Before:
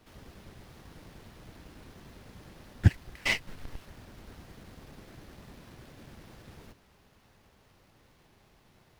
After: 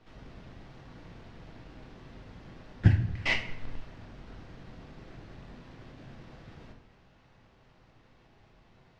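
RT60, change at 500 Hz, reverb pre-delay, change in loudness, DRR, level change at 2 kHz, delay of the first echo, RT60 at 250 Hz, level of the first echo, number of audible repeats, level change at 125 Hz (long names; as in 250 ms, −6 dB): 0.85 s, +1.5 dB, 6 ms, +1.0 dB, 3.0 dB, +0.5 dB, no echo audible, 0.95 s, no echo audible, no echo audible, +2.0 dB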